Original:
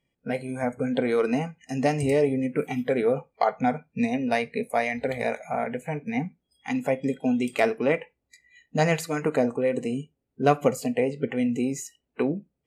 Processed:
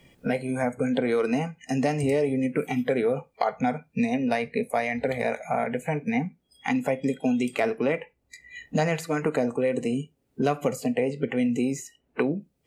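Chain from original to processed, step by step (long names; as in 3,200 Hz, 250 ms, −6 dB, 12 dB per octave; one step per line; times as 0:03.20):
in parallel at +2 dB: brickwall limiter −15.5 dBFS, peak gain reduction 8 dB
on the sum: multiband upward and downward compressor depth 70%
level −7 dB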